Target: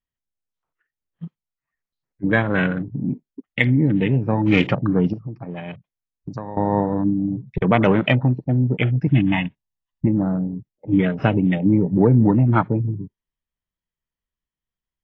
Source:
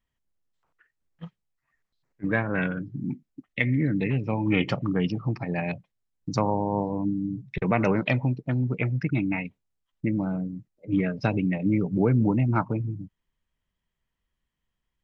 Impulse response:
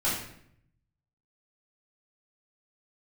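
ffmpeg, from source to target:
-filter_complex "[0:a]afwtdn=0.0178,asettb=1/sr,asplit=3[a][b][c];[a]atrim=end=5.134[d];[b]atrim=start=5.13:end=6.57,asetpts=PTS-STARTPTS,afade=t=in:d=0.004:c=qsin,afade=t=out:st=1.436:d=0.004:c=qsin,acompressor=threshold=-37dB:ratio=4[e];[c]atrim=start=6.566[f];[d][e]acrossfade=d=0.004:c1=hsin:c2=qsin[g];[g][f]acrossfade=d=0.004:c1=qsin:c2=hsin,asettb=1/sr,asplit=3[h][i][j];[h]atrim=end=9.074[k];[i]atrim=start=9.07:end=10.07,asetpts=PTS-STARTPTS,afade=t=in:d=0.004:c=qsin,afade=t=out:st=0.996:d=0.004:c=qsin,aecho=1:1:1.1:0.74,atrim=end_sample=44100[l];[j]atrim=start=10.066[m];[k][l]acrossfade=d=0.004:c1=hsin:c2=qsin[n];[n][m]acrossfade=d=0.004:c1=qsin:c2=hsin,volume=7dB" -ar 16000 -c:a aac -b:a 32k

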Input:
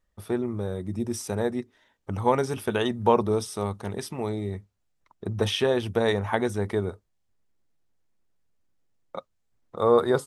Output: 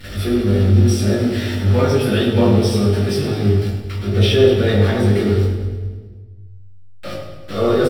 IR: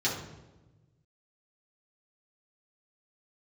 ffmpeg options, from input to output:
-filter_complex "[0:a]aeval=exprs='val(0)+0.5*0.0473*sgn(val(0))':c=same,equalizer=f=1k:t=o:w=0.34:g=-13.5,atempo=1.3,bandreject=f=6.6k:w=19,asplit=2[a][b];[b]adelay=20,volume=-3.5dB[c];[a][c]amix=inputs=2:normalize=0,aecho=1:1:105|210|315|420|525|630|735:0.299|0.173|0.1|0.0582|0.0338|0.0196|0.0114[d];[1:a]atrim=start_sample=2205,asetrate=33957,aresample=44100[e];[d][e]afir=irnorm=-1:irlink=0,volume=-7dB"

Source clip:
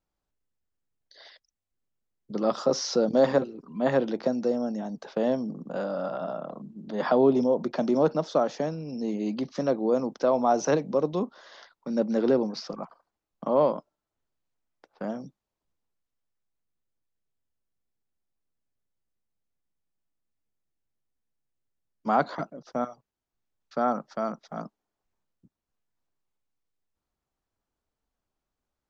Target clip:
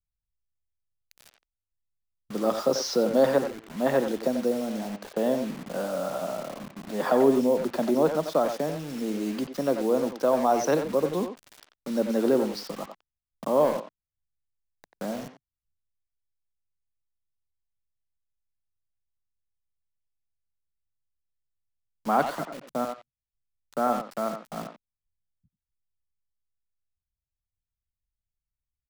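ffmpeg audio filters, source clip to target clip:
-filter_complex "[0:a]acrossover=split=140[a][b];[a]alimiter=level_in=22dB:limit=-24dB:level=0:latency=1,volume=-22dB[c];[b]acrusher=bits=6:mix=0:aa=0.000001[d];[c][d]amix=inputs=2:normalize=0,asplit=2[e][f];[f]adelay=90,highpass=300,lowpass=3.4k,asoftclip=type=hard:threshold=-18.5dB,volume=-7dB[g];[e][g]amix=inputs=2:normalize=0"

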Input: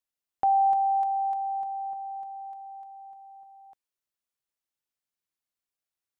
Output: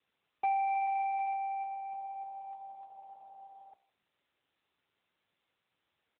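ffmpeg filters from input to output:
-filter_complex "[0:a]aresample=11025,asoftclip=type=tanh:threshold=-29dB,aresample=44100,aecho=1:1:2.3:0.31,asplit=2[a][b];[b]adelay=160,highpass=300,lowpass=3.4k,asoftclip=type=hard:threshold=-35dB,volume=-27dB[c];[a][c]amix=inputs=2:normalize=0,acrossover=split=430[d][e];[e]volume=29dB,asoftclip=hard,volume=-29dB[f];[d][f]amix=inputs=2:normalize=0,adynamicequalizer=threshold=0.00631:dfrequency=790:dqfactor=5.5:tfrequency=790:tqfactor=5.5:attack=5:release=100:ratio=0.375:range=2:mode=cutabove:tftype=bell,bandreject=f=59.7:t=h:w=4,bandreject=f=119.4:t=h:w=4,bandreject=f=179.1:t=h:w=4,bandreject=f=238.8:t=h:w=4,bandreject=f=298.5:t=h:w=4,bandreject=f=358.2:t=h:w=4,bandreject=f=417.9:t=h:w=4,bandreject=f=477.6:t=h:w=4,bandreject=f=537.3:t=h:w=4,bandreject=f=597:t=h:w=4,bandreject=f=656.7:t=h:w=4,bandreject=f=716.4:t=h:w=4,volume=2.5dB" -ar 8000 -c:a libopencore_amrnb -b:a 10200

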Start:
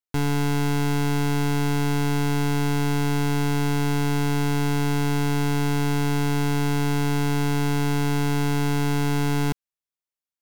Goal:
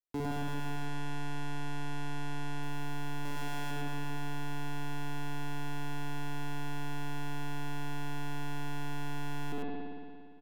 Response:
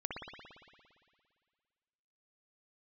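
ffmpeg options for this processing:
-filter_complex "[0:a]firequalizer=gain_entry='entry(100,0);entry(780,-6);entry(1300,-14)':delay=0.05:min_phase=1,acrossover=split=230|1000[a][b][c];[a]aeval=exprs='max(val(0),0)':c=same[d];[d][b][c]amix=inputs=3:normalize=0,asettb=1/sr,asplit=3[e][f][g];[e]atrim=end=0.764[h];[f]atrim=start=0.76:end=2.63,asetpts=PTS-STARTPTS,afade=t=in:d=0.004:c=qsin,afade=t=out:st=1.866:d=0.004:c=qsin,lowpass=11k[i];[g]atrim=start=2.626[j];[h][i]acrossfade=d=0.004:c1=hsin:c2=qsin[k];[k][j]acrossfade=d=0.004:c1=qsin:c2=hsin,asettb=1/sr,asplit=3[l][m][n];[l]atrim=end=3.254[o];[m]atrim=start=3.25:end=3.71,asetpts=PTS-STARTPTS,afade=t=in:d=0.004:c=qsin,afade=t=out:st=0.456:d=0.004:c=qsin,tiltshelf=f=720:g=-4[p];[n]atrim=start=3.706[q];[o][p]acrossfade=d=0.004:c1=hsin:c2=qsin[r];[r][q]acrossfade=d=0.004:c1=qsin:c2=hsin,aecho=1:1:103:0.631[s];[1:a]atrim=start_sample=2205[t];[s][t]afir=irnorm=-1:irlink=0,asoftclip=type=tanh:threshold=-28dB,volume=1dB"

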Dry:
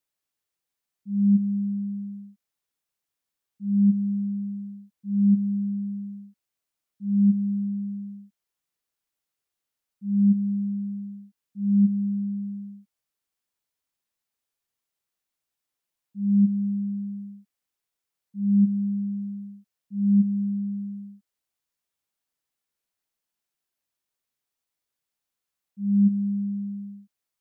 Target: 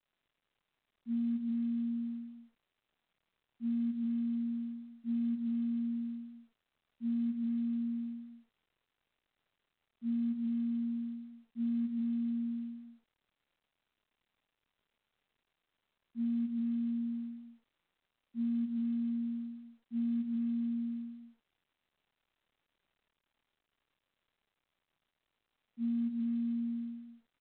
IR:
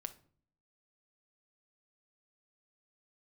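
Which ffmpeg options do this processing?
-filter_complex "[0:a]asplit=2[a][b];[b]alimiter=limit=-23.5dB:level=0:latency=1:release=295,volume=-2.5dB[c];[a][c]amix=inputs=2:normalize=0[d];[1:a]atrim=start_sample=2205,atrim=end_sample=3528,asetrate=52920,aresample=44100[e];[d][e]afir=irnorm=-1:irlink=0,afreqshift=33,lowshelf=f=230:g=5.5,aecho=1:1:131:0.447,acompressor=threshold=-23dB:ratio=12,adynamicequalizer=threshold=0.00708:dfrequency=180:dqfactor=3.8:tfrequency=180:tqfactor=3.8:attack=5:release=100:ratio=0.375:range=2.5:mode=boostabove:tftype=bell,volume=-9dB" -ar 8000 -c:a pcm_mulaw

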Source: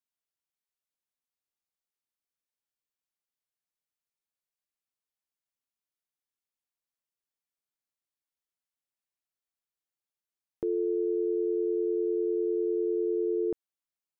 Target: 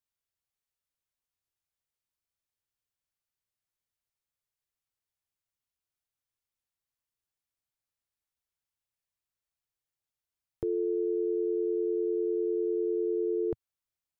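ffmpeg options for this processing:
-af "lowshelf=f=150:t=q:w=1.5:g=8"

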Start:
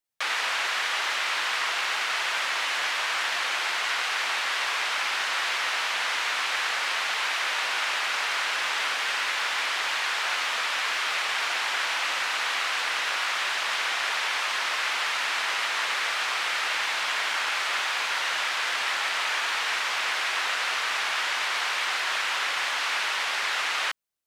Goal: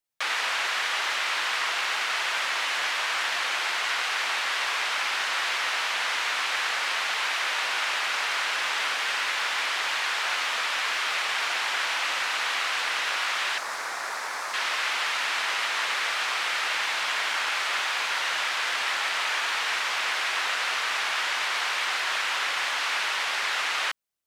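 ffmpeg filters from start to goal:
-filter_complex "[0:a]asettb=1/sr,asplit=3[a][b][c];[a]atrim=end=13.584[d];[b]atrim=start=13.58:end=14.54,asetpts=PTS-STARTPTS,afade=t=in:d=0.004:c=qsin,afade=t=out:st=0.956:d=0.004:c=qsin,equalizer=f=3k:w=1.4:g=-14.5[e];[c]atrim=start=14.536[f];[d][e]acrossfade=d=0.004:c1=hsin:c2=qsin[g];[g][f]acrossfade=d=0.004:c1=qsin:c2=hsin"

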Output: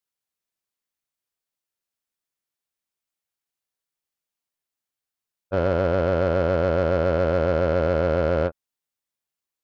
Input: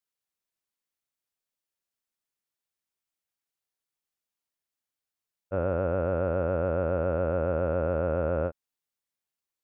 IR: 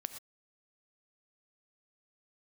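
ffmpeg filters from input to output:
-af "acontrast=75,aeval=exprs='0.316*(cos(1*acos(clip(val(0)/0.316,-1,1)))-cos(1*PI/2))+0.0158*(cos(6*acos(clip(val(0)/0.316,-1,1)))-cos(6*PI/2))+0.0224*(cos(7*acos(clip(val(0)/0.316,-1,1)))-cos(7*PI/2))':c=same"

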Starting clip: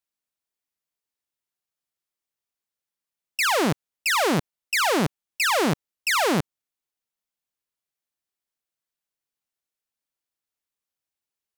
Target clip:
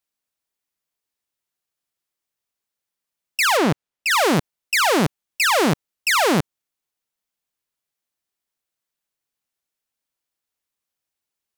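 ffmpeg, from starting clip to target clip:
-filter_complex "[0:a]asettb=1/sr,asplit=3[a][b][c];[a]atrim=end=3.574[d];[b]atrim=start=3.57:end=4.11,asetpts=PTS-STARTPTS,afade=t=in:d=0.004:c=qsin,afade=t=out:st=0.536:d=0.004:c=qsin,highshelf=f=5.7k:g=-8.5[e];[c]atrim=start=4.106[f];[d][e]acrossfade=d=0.004:c1=hsin:c2=qsin[g];[g][f]acrossfade=d=0.004:c1=qsin:c2=hsin,volume=4dB"

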